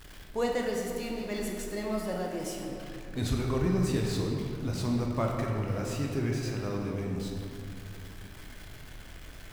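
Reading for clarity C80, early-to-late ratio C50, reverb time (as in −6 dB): 2.5 dB, 1.0 dB, 2.6 s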